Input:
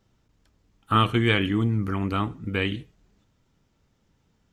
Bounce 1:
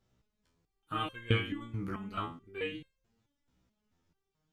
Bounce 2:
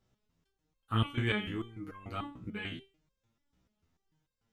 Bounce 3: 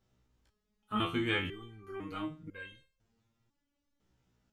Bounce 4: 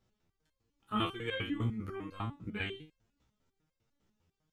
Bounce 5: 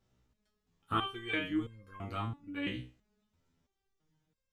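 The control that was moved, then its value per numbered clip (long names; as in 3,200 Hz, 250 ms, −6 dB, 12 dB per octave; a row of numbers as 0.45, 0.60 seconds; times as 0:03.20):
step-sequenced resonator, speed: 4.6, 6.8, 2, 10, 3 Hertz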